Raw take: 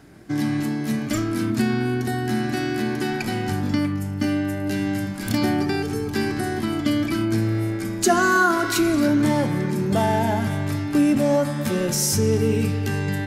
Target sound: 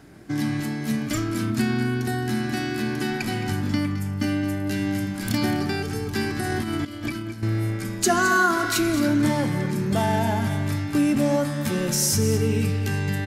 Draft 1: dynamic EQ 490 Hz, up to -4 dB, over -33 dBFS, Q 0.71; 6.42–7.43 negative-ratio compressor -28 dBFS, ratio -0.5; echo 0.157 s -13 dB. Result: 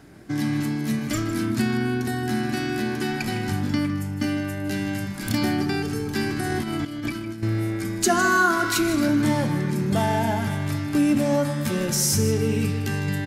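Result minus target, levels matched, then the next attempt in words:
echo 59 ms early
dynamic EQ 490 Hz, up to -4 dB, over -33 dBFS, Q 0.71; 6.42–7.43 negative-ratio compressor -28 dBFS, ratio -0.5; echo 0.216 s -13 dB

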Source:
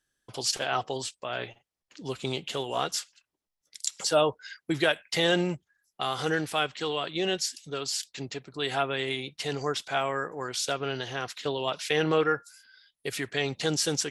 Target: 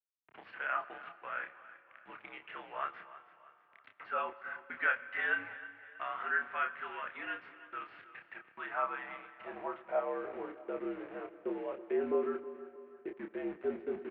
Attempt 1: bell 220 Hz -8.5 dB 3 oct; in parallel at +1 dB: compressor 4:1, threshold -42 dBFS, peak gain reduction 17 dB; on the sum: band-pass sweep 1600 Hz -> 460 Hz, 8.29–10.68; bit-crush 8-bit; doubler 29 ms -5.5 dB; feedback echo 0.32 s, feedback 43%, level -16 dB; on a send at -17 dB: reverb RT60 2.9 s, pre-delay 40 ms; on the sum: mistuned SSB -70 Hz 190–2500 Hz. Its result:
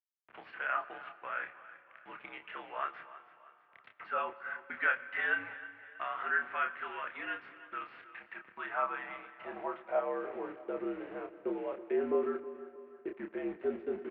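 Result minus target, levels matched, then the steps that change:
compressor: peak gain reduction -8 dB
change: compressor 4:1, threshold -53 dBFS, peak gain reduction 25 dB

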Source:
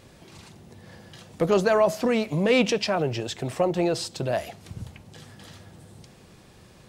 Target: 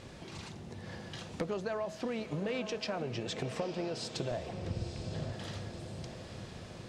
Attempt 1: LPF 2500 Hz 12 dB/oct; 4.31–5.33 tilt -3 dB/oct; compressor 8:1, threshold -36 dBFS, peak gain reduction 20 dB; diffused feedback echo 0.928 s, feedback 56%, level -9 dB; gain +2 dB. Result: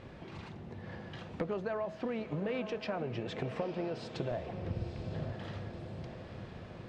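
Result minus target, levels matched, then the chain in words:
8000 Hz band -14.5 dB
LPF 7100 Hz 12 dB/oct; 4.31–5.33 tilt -3 dB/oct; compressor 8:1, threshold -36 dBFS, peak gain reduction 20 dB; diffused feedback echo 0.928 s, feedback 56%, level -9 dB; gain +2 dB

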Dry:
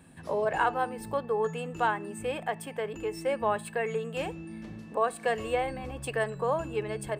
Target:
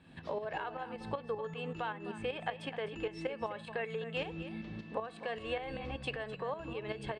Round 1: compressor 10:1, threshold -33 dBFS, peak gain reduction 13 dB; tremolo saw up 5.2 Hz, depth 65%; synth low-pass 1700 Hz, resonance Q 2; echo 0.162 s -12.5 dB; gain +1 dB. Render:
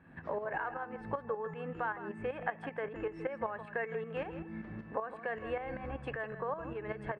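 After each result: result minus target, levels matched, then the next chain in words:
4000 Hz band -14.0 dB; echo 94 ms early
compressor 10:1, threshold -33 dBFS, peak gain reduction 13 dB; tremolo saw up 5.2 Hz, depth 65%; synth low-pass 3700 Hz, resonance Q 2; echo 0.162 s -12.5 dB; gain +1 dB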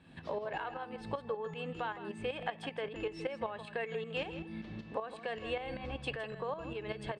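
echo 94 ms early
compressor 10:1, threshold -33 dBFS, peak gain reduction 13 dB; tremolo saw up 5.2 Hz, depth 65%; synth low-pass 3700 Hz, resonance Q 2; echo 0.256 s -12.5 dB; gain +1 dB

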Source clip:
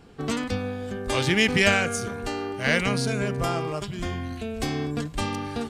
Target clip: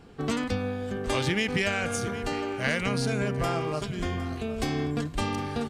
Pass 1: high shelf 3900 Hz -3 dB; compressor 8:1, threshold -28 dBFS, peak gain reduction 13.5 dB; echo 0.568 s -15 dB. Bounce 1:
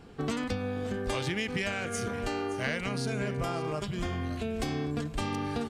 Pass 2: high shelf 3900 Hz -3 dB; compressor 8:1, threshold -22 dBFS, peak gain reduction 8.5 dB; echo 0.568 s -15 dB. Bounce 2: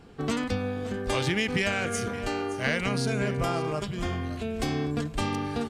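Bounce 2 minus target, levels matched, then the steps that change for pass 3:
echo 0.192 s early
change: echo 0.76 s -15 dB

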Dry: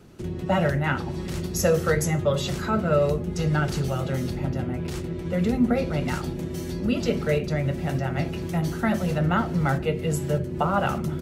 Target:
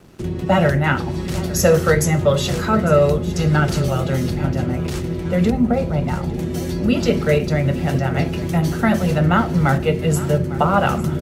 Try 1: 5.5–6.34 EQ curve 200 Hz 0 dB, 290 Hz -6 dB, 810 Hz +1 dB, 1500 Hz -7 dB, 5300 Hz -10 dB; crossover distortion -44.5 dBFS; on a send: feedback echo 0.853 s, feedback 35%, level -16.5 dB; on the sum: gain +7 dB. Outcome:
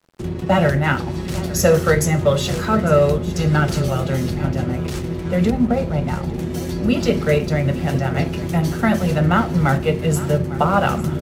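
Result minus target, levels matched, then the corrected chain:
crossover distortion: distortion +11 dB
5.5–6.34 EQ curve 200 Hz 0 dB, 290 Hz -6 dB, 810 Hz +1 dB, 1500 Hz -7 dB, 5300 Hz -10 dB; crossover distortion -55.5 dBFS; on a send: feedback echo 0.853 s, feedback 35%, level -16.5 dB; on the sum: gain +7 dB

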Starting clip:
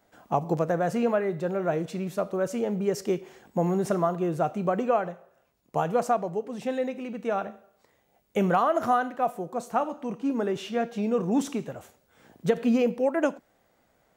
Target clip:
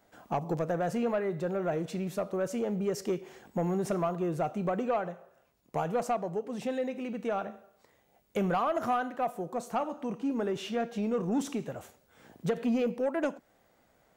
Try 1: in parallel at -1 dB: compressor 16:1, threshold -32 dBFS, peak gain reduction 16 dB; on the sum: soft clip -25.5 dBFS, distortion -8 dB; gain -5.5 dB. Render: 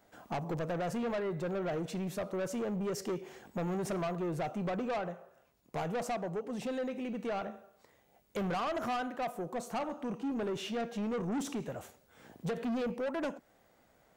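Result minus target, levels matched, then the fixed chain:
soft clip: distortion +10 dB
in parallel at -1 dB: compressor 16:1, threshold -32 dBFS, peak gain reduction 16 dB; on the sum: soft clip -15.5 dBFS, distortion -19 dB; gain -5.5 dB

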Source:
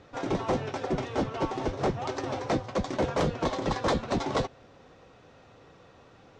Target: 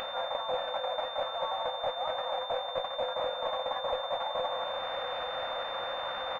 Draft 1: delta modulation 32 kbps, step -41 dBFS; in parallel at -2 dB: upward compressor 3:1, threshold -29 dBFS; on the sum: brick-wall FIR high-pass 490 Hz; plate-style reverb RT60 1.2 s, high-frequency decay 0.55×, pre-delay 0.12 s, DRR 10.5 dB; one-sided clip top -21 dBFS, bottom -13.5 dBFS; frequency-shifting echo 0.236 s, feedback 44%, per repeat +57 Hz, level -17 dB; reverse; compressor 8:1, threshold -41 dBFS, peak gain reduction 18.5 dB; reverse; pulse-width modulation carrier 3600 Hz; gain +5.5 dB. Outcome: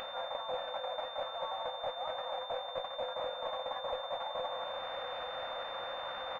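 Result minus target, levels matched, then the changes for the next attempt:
compressor: peak gain reduction +5 dB
change: compressor 8:1, threshold -35 dBFS, peak gain reduction 13.5 dB

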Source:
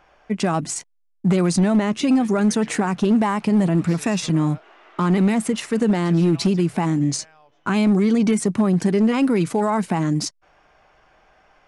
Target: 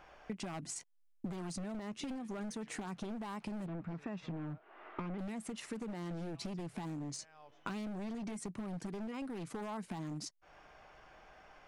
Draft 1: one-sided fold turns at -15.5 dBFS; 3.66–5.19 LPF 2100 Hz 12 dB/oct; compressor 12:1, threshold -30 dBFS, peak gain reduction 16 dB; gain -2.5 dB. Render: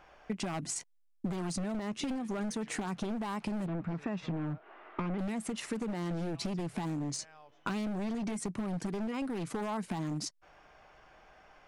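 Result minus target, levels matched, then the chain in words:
compressor: peak gain reduction -6.5 dB
one-sided fold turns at -15.5 dBFS; 3.66–5.19 LPF 2100 Hz 12 dB/oct; compressor 12:1, threshold -37 dBFS, peak gain reduction 22 dB; gain -2.5 dB

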